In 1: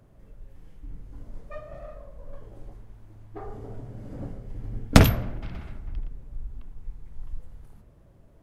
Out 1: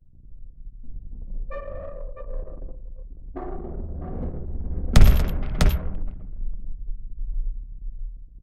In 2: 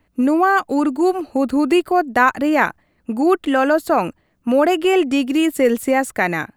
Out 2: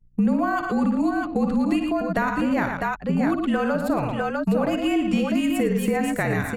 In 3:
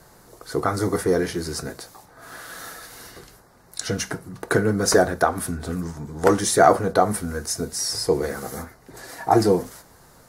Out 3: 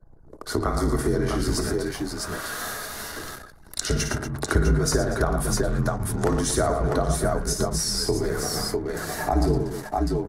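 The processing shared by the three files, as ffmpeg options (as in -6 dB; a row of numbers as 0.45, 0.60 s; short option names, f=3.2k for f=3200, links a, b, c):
-filter_complex "[0:a]asplit=2[a][b];[b]aecho=0:1:55|98|114|236|650|659:0.376|0.126|0.376|0.141|0.447|0.211[c];[a][c]amix=inputs=2:normalize=0,acrossover=split=160[d][e];[e]acompressor=threshold=-29dB:ratio=4[f];[d][f]amix=inputs=2:normalize=0,aeval=exprs='val(0)+0.00224*(sin(2*PI*60*n/s)+sin(2*PI*2*60*n/s)/2+sin(2*PI*3*60*n/s)/3+sin(2*PI*4*60*n/s)/4+sin(2*PI*5*60*n/s)/5)':c=same,anlmdn=0.158,afreqshift=-46,volume=5dB"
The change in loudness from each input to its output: -0.5, -5.5, -3.0 LU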